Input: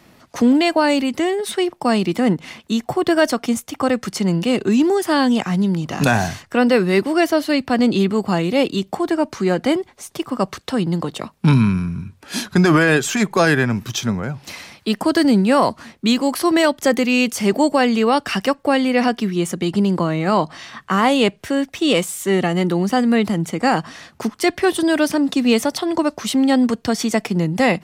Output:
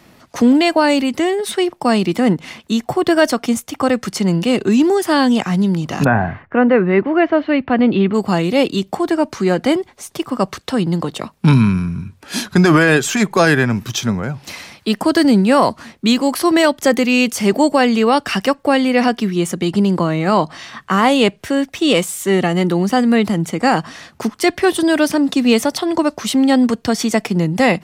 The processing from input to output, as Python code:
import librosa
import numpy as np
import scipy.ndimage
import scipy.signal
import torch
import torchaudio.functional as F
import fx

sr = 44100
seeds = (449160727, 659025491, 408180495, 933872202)

y = fx.lowpass(x, sr, hz=fx.line((6.03, 1800.0), (8.13, 3200.0)), slope=24, at=(6.03, 8.13), fade=0.02)
y = y * 10.0 ** (2.5 / 20.0)